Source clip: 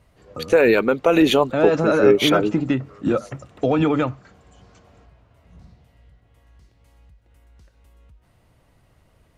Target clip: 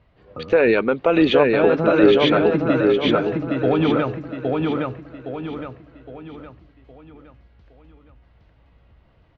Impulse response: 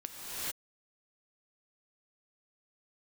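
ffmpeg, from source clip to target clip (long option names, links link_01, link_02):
-af "lowpass=frequency=3900:width=0.5412,lowpass=frequency=3900:width=1.3066,aecho=1:1:814|1628|2442|3256|4070:0.708|0.29|0.119|0.0488|0.02,volume=-1dB"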